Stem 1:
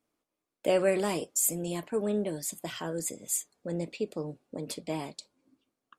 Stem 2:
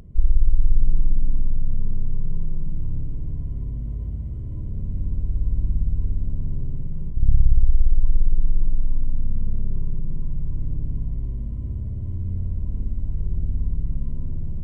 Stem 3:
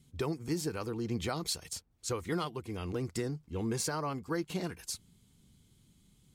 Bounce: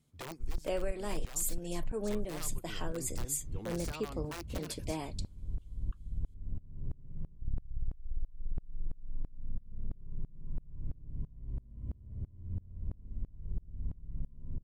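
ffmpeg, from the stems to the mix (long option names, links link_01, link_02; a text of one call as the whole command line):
ffmpeg -i stem1.wav -i stem2.wav -i stem3.wav -filter_complex "[0:a]volume=-3dB[link_01];[1:a]aeval=exprs='val(0)*pow(10,-28*if(lt(mod(-3*n/s,1),2*abs(-3)/1000),1-mod(-3*n/s,1)/(2*abs(-3)/1000),(mod(-3*n/s,1)-2*abs(-3)/1000)/(1-2*abs(-3)/1000))/20)':channel_layout=same,adelay=250,volume=-6dB[link_02];[2:a]aeval=exprs='(mod(21.1*val(0)+1,2)-1)/21.1':channel_layout=same,volume=-10dB[link_03];[link_01][link_02][link_03]amix=inputs=3:normalize=0,acompressor=threshold=-29dB:ratio=6" out.wav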